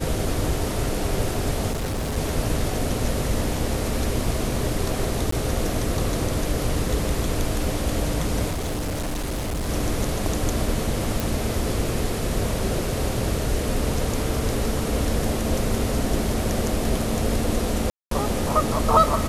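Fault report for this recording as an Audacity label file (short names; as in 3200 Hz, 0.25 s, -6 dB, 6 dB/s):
1.710000	2.180000	clipped -23 dBFS
5.310000	5.320000	gap 14 ms
8.500000	9.690000	clipped -23.5 dBFS
11.200000	11.200000	pop
17.900000	18.110000	gap 0.213 s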